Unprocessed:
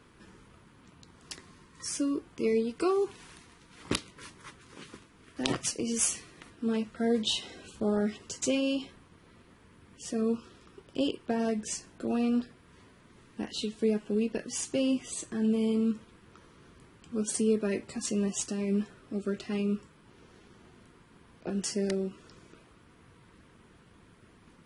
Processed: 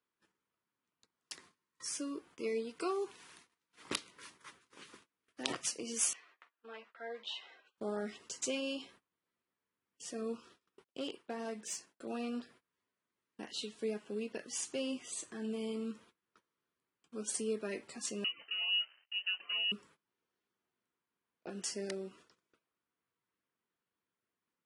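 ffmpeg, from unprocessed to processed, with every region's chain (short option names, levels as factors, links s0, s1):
-filter_complex "[0:a]asettb=1/sr,asplit=3[s0][s1][s2];[s0]atrim=end=6.134[s3];[s1]atrim=start=6.13:end=7.78,asetpts=PTS-STARTPTS,afade=t=in:d=0.004:c=qsin,afade=t=out:st=1.646:d=0.004:c=qsin,highpass=770,lowpass=2300,asplit=2[s4][s5];[s5]adelay=13,volume=0.224[s6];[s4][s6]amix=inputs=2:normalize=0,atrim=end_sample=72765[s7];[s2]atrim=start=7.776[s8];[s3][s7]acrossfade=d=0.004:c1=hsin:c2=qsin[s9];[s9][s8]acrossfade=d=0.004:c1=qsin:c2=hsin,asettb=1/sr,asplit=3[s10][s11][s12];[s10]atrim=end=10.844[s13];[s11]atrim=start=10.84:end=12.07,asetpts=PTS-STARTPTS,afade=t=in:d=0.004:c=qsin,afade=t=out:st=1.226:d=0.004:c=qsin,agate=range=0.0224:threshold=0.00316:ratio=3:release=100:detection=peak,equalizer=f=74:t=o:w=0.85:g=-12.5,aeval=exprs='(tanh(12.6*val(0)+0.3)-tanh(0.3))/12.6':c=same[s14];[s12]atrim=start=12.066[s15];[s13][s14]acrossfade=d=0.004:c1=hsin:c2=qsin[s16];[s16][s15]acrossfade=d=0.004:c1=qsin:c2=hsin,asettb=1/sr,asplit=3[s17][s18][s19];[s17]atrim=end=18.244[s20];[s18]atrim=start=18.24:end=19.72,asetpts=PTS-STARTPTS,afade=t=in:d=0.004:c=qsin,afade=t=out:st=1.476:d=0.004:c=qsin,aeval=exprs='sgn(val(0))*max(abs(val(0))-0.00158,0)':c=same,lowpass=f=2600:t=q:w=0.5098,lowpass=f=2600:t=q:w=0.6013,lowpass=f=2600:t=q:w=0.9,lowpass=f=2600:t=q:w=2.563,afreqshift=-3100[s21];[s19]atrim=start=19.716[s22];[s20][s21]acrossfade=d=0.004:c1=hsin:c2=qsin[s23];[s23][s22]acrossfade=d=0.004:c1=qsin:c2=hsin,highpass=f=560:p=1,agate=range=0.0631:threshold=0.00178:ratio=16:detection=peak,volume=0.596"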